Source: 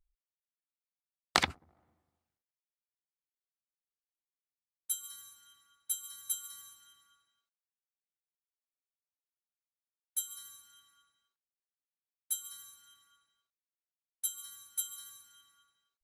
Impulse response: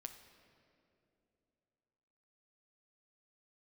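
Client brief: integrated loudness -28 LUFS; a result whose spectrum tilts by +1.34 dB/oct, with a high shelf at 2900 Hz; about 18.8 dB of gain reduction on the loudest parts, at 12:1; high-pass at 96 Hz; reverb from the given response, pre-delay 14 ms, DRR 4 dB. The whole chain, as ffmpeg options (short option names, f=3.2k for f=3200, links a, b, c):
-filter_complex "[0:a]highpass=96,highshelf=f=2.9k:g=6,acompressor=threshold=-42dB:ratio=12,asplit=2[a][b];[1:a]atrim=start_sample=2205,adelay=14[c];[b][c]afir=irnorm=-1:irlink=0,volume=1dB[d];[a][d]amix=inputs=2:normalize=0,volume=17.5dB"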